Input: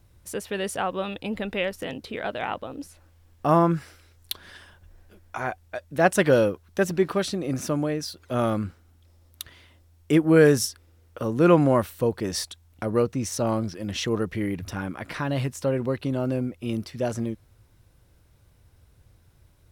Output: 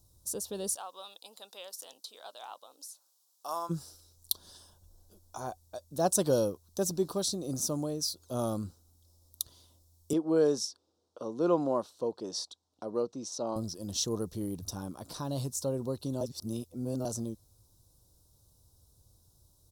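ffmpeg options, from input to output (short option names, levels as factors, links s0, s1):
-filter_complex "[0:a]asplit=3[s0][s1][s2];[s0]afade=t=out:st=0.74:d=0.02[s3];[s1]highpass=1100,afade=t=in:st=0.74:d=0.02,afade=t=out:st=3.69:d=0.02[s4];[s2]afade=t=in:st=3.69:d=0.02[s5];[s3][s4][s5]amix=inputs=3:normalize=0,asettb=1/sr,asplit=3[s6][s7][s8];[s6]atrim=end=10.134[s9];[s7]atrim=start=10.13:end=13.56,asetpts=PTS-STARTPTS,afade=t=in:d=0.004:c=qsin,afade=t=out:st=3.426:d=0.004:c=qsin,highpass=280,lowpass=3500[s10];[s8]atrim=start=13.556[s11];[s9][s10]acrossfade=d=0.004:c1=hsin:c2=qsin[s12];[s12][s11]acrossfade=d=0.004:c1=qsin:c2=hsin,asplit=3[s13][s14][s15];[s13]atrim=end=16.212[s16];[s14]atrim=start=16.208:end=17.052,asetpts=PTS-STARTPTS,areverse[s17];[s15]atrim=start=17.048[s18];[s16][s17]acrossfade=d=0.004:c1=hsin:c2=hsin[s19];[s19][s18]acrossfade=d=0.004:c1=hsin:c2=hsin,firequalizer=gain_entry='entry(1000,0);entry(2000,-24);entry(3800,6);entry(5800,12)':delay=0.05:min_phase=1,volume=0.398"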